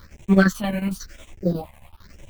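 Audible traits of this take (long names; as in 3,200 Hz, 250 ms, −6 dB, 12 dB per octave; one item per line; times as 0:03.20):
a quantiser's noise floor 8 bits, dither none
phaser sweep stages 6, 0.99 Hz, lowest notch 350–1,300 Hz
chopped level 11 Hz, depth 65%, duty 65%
a shimmering, thickened sound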